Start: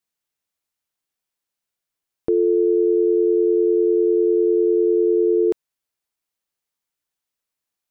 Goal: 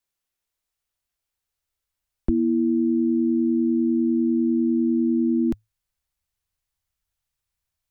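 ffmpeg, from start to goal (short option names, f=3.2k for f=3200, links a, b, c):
-af "afreqshift=-110,asubboost=boost=10.5:cutoff=90"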